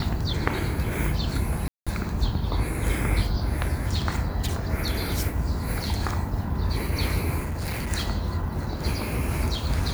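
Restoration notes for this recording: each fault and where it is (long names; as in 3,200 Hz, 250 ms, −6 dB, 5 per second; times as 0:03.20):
0:01.68–0:01.87: drop-out 186 ms
0:07.43–0:07.89: clipping −25.5 dBFS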